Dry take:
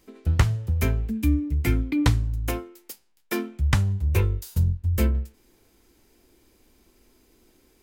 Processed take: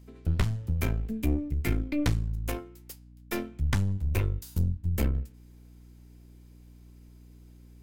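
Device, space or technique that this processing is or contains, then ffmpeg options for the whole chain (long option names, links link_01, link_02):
valve amplifier with mains hum: -af "aeval=exprs='(tanh(8.91*val(0)+0.75)-tanh(0.75))/8.91':channel_layout=same,aeval=exprs='val(0)+0.00355*(sin(2*PI*60*n/s)+sin(2*PI*2*60*n/s)/2+sin(2*PI*3*60*n/s)/3+sin(2*PI*4*60*n/s)/4+sin(2*PI*5*60*n/s)/5)':channel_layout=same,volume=-1dB"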